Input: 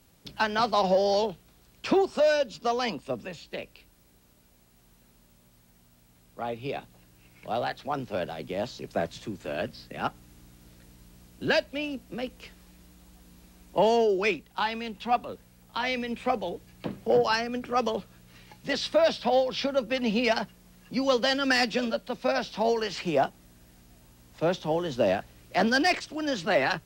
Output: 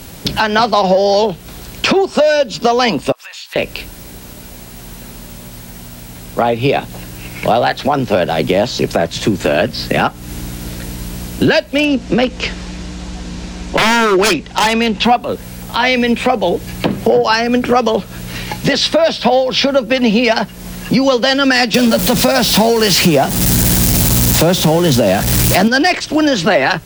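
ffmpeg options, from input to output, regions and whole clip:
-filter_complex "[0:a]asettb=1/sr,asplit=3[a][b][c];[a]atrim=end=3.124[d];[b]atrim=start=3.12:end=3.56,asetpts=PTS-STARTPTS,afade=t=in:d=0.004:c=qsin,afade=t=out:st=0.436:d=0.004:c=qsin,highpass=f=1k:w=0.5412,highpass=f=1k:w=1.3066,acompressor=threshold=-55dB:ratio=8:attack=3.2:release=140:knee=1:detection=peak[e];[c]atrim=start=3.556[f];[d][e]acrossfade=d=0.004:c1=hsin:c2=qsin[g];[g][f]acrossfade=d=0.004:c1=qsin:c2=hsin,asettb=1/sr,asplit=3[h][i][j];[h]atrim=end=11.784[k];[i]atrim=start=11.78:end=15.04,asetpts=PTS-STARTPTS,afade=t=in:d=0.004:c=qsin,afade=t=out:st=3.256:d=0.004:c=qsin,lowpass=f=7k:w=0.5412,lowpass=f=7k:w=1.3066,aeval=exprs='0.0562*(abs(mod(val(0)/0.0562+3,4)-2)-1)':c=same[l];[j]atrim=start=15.036[m];[k][l]acrossfade=d=0.004:c1=hsin:c2=qsin[n];[n][m]acrossfade=d=0.004:c1=qsin:c2=hsin,asettb=1/sr,asplit=3[o][p][q];[o]atrim=end=21.744[r];[p]atrim=start=21.74:end=25.68,asetpts=PTS-STARTPTS,afade=t=in:d=0.004:c=qsin,afade=t=out:st=3.936:d=0.004:c=qsin,aeval=exprs='val(0)+0.5*0.0266*sgn(val(0))':c=same,highpass=f=84:p=1,bass=f=250:g=9,treble=f=4k:g=7[s];[q]atrim=start=25.676[t];[r][s]acrossfade=d=0.004:c1=hsin:c2=qsin[u];[u][t]acrossfade=d=0.004:c1=qsin:c2=hsin,bandreject=f=1.2k:w=21,acompressor=threshold=-38dB:ratio=6,alimiter=level_in=29dB:limit=-1dB:release=50:level=0:latency=1,volume=-1dB"

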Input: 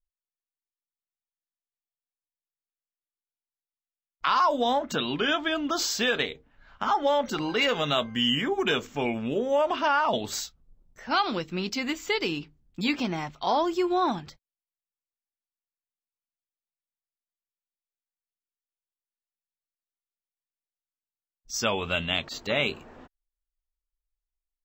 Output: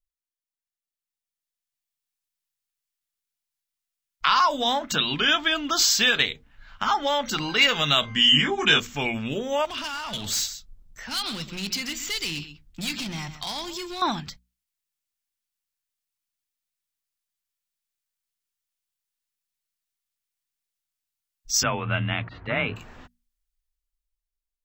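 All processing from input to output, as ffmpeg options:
-filter_complex "[0:a]asettb=1/sr,asplit=3[a][b][c];[a]atrim=end=8.014[d];[b]atrim=start=8.01:end=8.8,asetpts=PTS-STARTPTS,afade=t=in:d=0.004:c=qsin,afade=t=out:st=0.786:d=0.004:c=qsin,lowpass=7.8k,asplit=2[e][f];[f]adelay=20,volume=-3dB[g];[e][g]amix=inputs=2:normalize=0,atrim=end_sample=34839,acompressor=mode=upward:threshold=-35dB:ratio=2.5:attack=3.2:release=140:knee=2.83:detection=peak[h];[c]atrim=start=8.796[i];[d][h]acrossfade=d=0.004:c1=hsin:c2=qsin[j];[j][i]acrossfade=d=0.004:c1=qsin:c2=hsin,asettb=1/sr,asplit=3[k][l][m];[k]atrim=end=9.654[n];[l]atrim=start=9.65:end=14.02,asetpts=PTS-STARTPTS,afade=t=in:d=0.004:c=qsin,afade=t=out:st=4.366:d=0.004:c=qsin,acrossover=split=210|3000[o][p][q];[p]acompressor=threshold=-36dB:ratio=4:attack=3.2:release=140:knee=2.83:detection=peak[r];[o][r][q]amix=inputs=3:normalize=0,aecho=1:1:132:0.211,atrim=end_sample=192717,asoftclip=type=hard:threshold=-31dB[s];[m]atrim=start=14.016[t];[n][s]acrossfade=d=0.004:c1=hsin:c2=qsin[u];[u][t]acrossfade=d=0.004:c1=qsin:c2=hsin,asettb=1/sr,asplit=3[v][w][x];[v]atrim=end=21.634[y];[w]atrim=start=21.63:end=22.76,asetpts=PTS-STARTPTS,afade=t=in:d=0.004:c=qsin,afade=t=out:st=1.126:d=0.004:c=qsin,lowpass=f=2k:w=0.5412,lowpass=f=2k:w=1.3066,equalizer=f=73:t=o:w=0.83:g=10,afreqshift=27[z];[x]atrim=start=22.756[aa];[y][z]acrossfade=d=0.004:c1=hsin:c2=qsin[ab];[ab][aa]acrossfade=d=0.004:c1=qsin:c2=hsin,equalizer=f=450:w=0.46:g=-13,bandreject=f=60:t=h:w=6,bandreject=f=120:t=h:w=6,bandreject=f=180:t=h:w=6,bandreject=f=240:t=h:w=6,dynaudnorm=f=270:g=11:m=10dB"

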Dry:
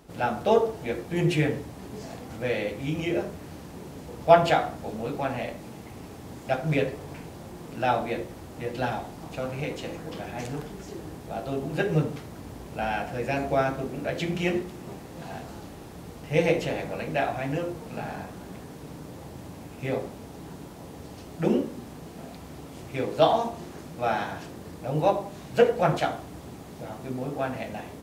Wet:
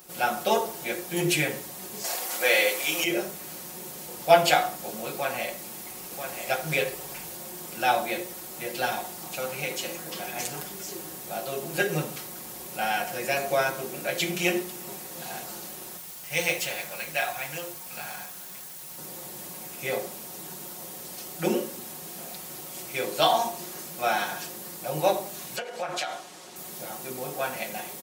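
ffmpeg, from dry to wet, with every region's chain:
-filter_complex "[0:a]asettb=1/sr,asplit=3[a][b][c];[a]atrim=end=2.044[d];[b]atrim=start=2.04:end=3.04,asetpts=PTS-STARTPTS,afade=t=in:d=0.004:c=qsin,afade=t=out:st=0.996:d=0.004:c=qsin,highpass=490,acontrast=85[e];[c]atrim=start=3.036[f];[d][e]acrossfade=d=0.004:c1=hsin:c2=qsin[g];[g][f]acrossfade=d=0.004:c1=qsin:c2=hsin,asettb=1/sr,asplit=3[h][i][j];[h]atrim=end=5.134[k];[i]atrim=start=5.13:end=7.35,asetpts=PTS-STARTPTS,afade=t=in:d=0.004:c=qsin,afade=t=out:st=2.216:d=0.004:c=qsin,asubboost=boost=4.5:cutoff=90,aecho=1:1:987:0.422,atrim=end_sample=97902[l];[j]atrim=start=7.346[m];[k][l]acrossfade=d=0.004:c1=hsin:c2=qsin[n];[n][m]acrossfade=d=0.004:c1=qsin:c2=hsin,asettb=1/sr,asplit=3[o][p][q];[o]atrim=end=15.974[r];[p]atrim=start=15.97:end=18.98,asetpts=PTS-STARTPTS,afade=t=in:d=0.004:c=qsin,afade=t=out:st=3.006:d=0.004:c=qsin,equalizer=f=320:w=0.56:g=-9.5,aeval=exprs='sgn(val(0))*max(abs(val(0))-0.00133,0)':c=same[s];[q]atrim=start=18.976[t];[r][s]acrossfade=d=0.004:c1=hsin:c2=qsin[u];[u][t]acrossfade=d=0.004:c1=qsin:c2=hsin,asettb=1/sr,asplit=3[v][w][x];[v]atrim=end=25.564[y];[w]atrim=start=25.56:end=26.56,asetpts=PTS-STARTPTS,afade=t=in:d=0.004:c=qsin,afade=t=out:st=0.996:d=0.004:c=qsin,highpass=110,lowpass=6.4k,lowshelf=f=270:g=-11,acompressor=threshold=-28dB:ratio=10:attack=3.2:release=140:knee=1:detection=peak[z];[x]atrim=start=26.556[aa];[y][z]acrossfade=d=0.004:c1=hsin:c2=qsin[ab];[ab][aa]acrossfade=d=0.004:c1=qsin:c2=hsin,aemphasis=mode=production:type=riaa,aecho=1:1:5.5:0.69"

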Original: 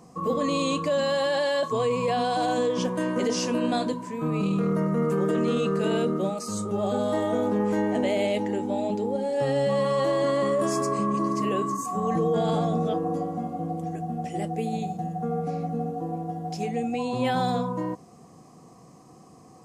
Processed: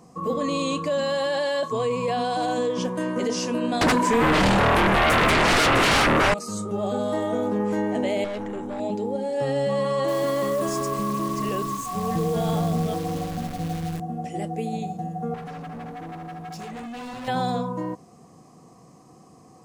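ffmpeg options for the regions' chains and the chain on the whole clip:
-filter_complex "[0:a]asettb=1/sr,asplit=3[a][b][c];[a]atrim=end=3.814[d];[b]atrim=start=3.81:end=6.34,asetpts=PTS-STARTPTS,afade=t=in:d=0.004:c=qsin,afade=t=out:st=2.526:d=0.004:c=qsin,highpass=260,aeval=exprs='0.168*sin(PI/2*5.62*val(0)/0.168)':c=same[e];[c]atrim=start=6.336[f];[d][e]acrossfade=d=0.004:c1=hsin:c2=qsin[g];[g][f]acrossfade=d=0.004:c1=qsin:c2=hsin,asettb=1/sr,asplit=3[h][i][j];[h]atrim=end=8.244[k];[i]atrim=start=8.24:end=8.8,asetpts=PTS-STARTPTS,afade=t=in:d=0.004:c=qsin,afade=t=out:st=0.556:d=0.004:c=qsin,bandreject=f=4.6k:w=5.2,acrossover=split=6000[l][m];[m]acompressor=threshold=-57dB:ratio=4:attack=1:release=60[n];[l][n]amix=inputs=2:normalize=0,aeval=exprs='(tanh(22.4*val(0)+0.3)-tanh(0.3))/22.4':c=same[o];[j]atrim=start=8.796[p];[k][o]acrossfade=d=0.004:c1=hsin:c2=qsin[q];[q][p]acrossfade=d=0.004:c1=qsin:c2=hsin,asettb=1/sr,asplit=3[r][s][t];[r]atrim=end=10.084[u];[s]atrim=start=10.08:end=14,asetpts=PTS-STARTPTS,afade=t=in:d=0.004:c=qsin,afade=t=out:st=3.916:d=0.004:c=qsin,acrusher=bits=7:dc=4:mix=0:aa=0.000001,asubboost=boost=7:cutoff=120[v];[t]atrim=start=13.996[w];[u][v]acrossfade=d=0.004:c1=hsin:c2=qsin[x];[x][w]acrossfade=d=0.004:c1=qsin:c2=hsin,asettb=1/sr,asplit=3[y][z][aa];[y]atrim=end=15.344[ab];[z]atrim=start=15.34:end=17.28,asetpts=PTS-STARTPTS,afade=t=in:d=0.004:c=qsin,afade=t=out:st=1.936:d=0.004:c=qsin,equalizer=f=120:w=2.2:g=-10,aecho=1:1:1.1:0.42,atrim=end_sample=85554,asoftclip=type=hard:threshold=-34dB[ac];[aa]atrim=start=17.276[ad];[ab][ac]acrossfade=d=0.004:c1=hsin:c2=qsin[ae];[ae][ad]acrossfade=d=0.004:c1=qsin:c2=hsin"

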